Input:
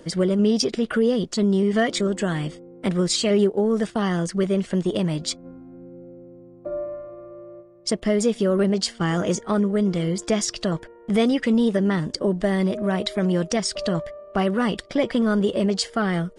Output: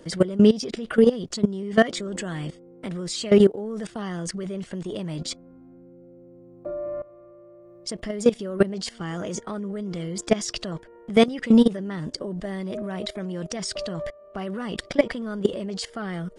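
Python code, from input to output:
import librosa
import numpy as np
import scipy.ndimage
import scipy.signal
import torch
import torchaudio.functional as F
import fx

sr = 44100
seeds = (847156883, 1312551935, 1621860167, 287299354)

y = fx.level_steps(x, sr, step_db=18)
y = y * librosa.db_to_amplitude(5.5)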